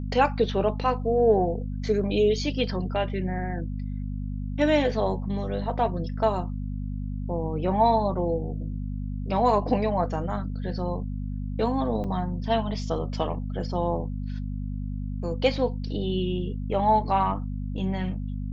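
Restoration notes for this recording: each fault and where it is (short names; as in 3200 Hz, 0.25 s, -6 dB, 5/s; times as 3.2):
hum 50 Hz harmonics 5 -31 dBFS
12.04 gap 5 ms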